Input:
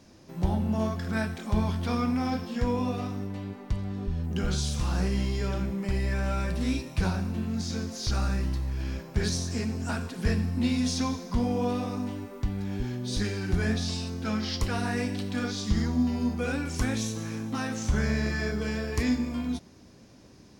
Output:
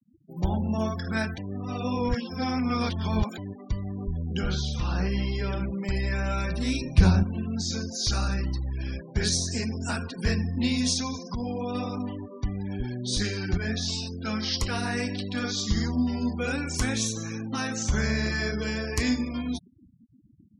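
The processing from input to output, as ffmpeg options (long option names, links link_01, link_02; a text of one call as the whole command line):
ffmpeg -i in.wav -filter_complex "[0:a]asettb=1/sr,asplit=3[link_01][link_02][link_03];[link_01]atrim=end=4.484[link_04];[link_02]atrim=start=4.48:end=5.69,asetpts=PTS-STARTPTS,afade=type=in:duration=0.004:curve=qsin,afade=type=out:start_time=1.206:duration=0.004:curve=qsin,acrossover=split=4000[link_05][link_06];[link_06]acompressor=threshold=-51dB:ratio=4:attack=1:release=60[link_07];[link_05][link_07]amix=inputs=2:normalize=0[link_08];[link_03]atrim=start=5.686[link_09];[link_04][link_08]acrossfade=duration=0.004:curve1=hsin:curve2=qsin[link_10];[link_10][link_09]acrossfade=duration=0.004:curve1=qsin:curve2=hsin,asettb=1/sr,asplit=3[link_11][link_12][link_13];[link_11]atrim=end=6.814[link_14];[link_12]atrim=start=6.81:end=7.23,asetpts=PTS-STARTPTS,afade=type=in:duration=0.004:curve=qsin,afade=type=out:start_time=0.416:duration=0.004:curve=qsin,lowshelf=frequency=360:gain=10.5[link_15];[link_13]atrim=start=7.226[link_16];[link_14][link_15]acrossfade=duration=0.004:curve1=hsin:curve2=qsin[link_17];[link_17][link_16]acrossfade=duration=0.004:curve1=qsin:curve2=hsin,asettb=1/sr,asplit=3[link_18][link_19][link_20];[link_18]atrim=end=10.934[link_21];[link_19]atrim=start=10.93:end=11.75,asetpts=PTS-STARTPTS,afade=type=in:duration=0.004:curve=qsin,afade=type=out:start_time=0.816:duration=0.004:curve=qsin,acompressor=threshold=-28dB:ratio=3:attack=3.2:release=140:knee=1:detection=peak[link_22];[link_20]atrim=start=11.746[link_23];[link_21][link_22]acrossfade=duration=0.004:curve1=hsin:curve2=qsin[link_24];[link_24][link_23]acrossfade=duration=0.004:curve1=qsin:curve2=hsin,asplit=4[link_25][link_26][link_27][link_28];[link_25]atrim=end=1.382[link_29];[link_26]atrim=start=1.378:end=3.382,asetpts=PTS-STARTPTS,areverse[link_30];[link_27]atrim=start=3.378:end=13.58,asetpts=PTS-STARTPTS,afade=type=out:start_time=10.198:duration=0.004:curve=hsin[link_31];[link_28]atrim=start=13.58,asetpts=PTS-STARTPTS,afade=type=in:duration=3.23:curve=log[link_32];[link_29][link_30]acrossfade=duration=0.004:curve1=hsin:curve2=hsin[link_33];[link_31][link_32]concat=n=2:v=0:a=1[link_34];[link_33][link_34]acrossfade=duration=0.004:curve1=hsin:curve2=hsin,highshelf=frequency=2100:gain=8,afftfilt=real='re*gte(hypot(re,im),0.0141)':imag='im*gte(hypot(re,im),0.0141)':win_size=1024:overlap=0.75" out.wav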